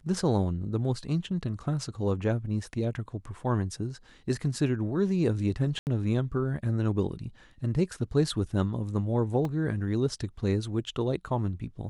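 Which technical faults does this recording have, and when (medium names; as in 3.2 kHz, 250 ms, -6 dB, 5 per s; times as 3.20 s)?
5.79–5.87 s: dropout 79 ms
9.45 s: dropout 2.1 ms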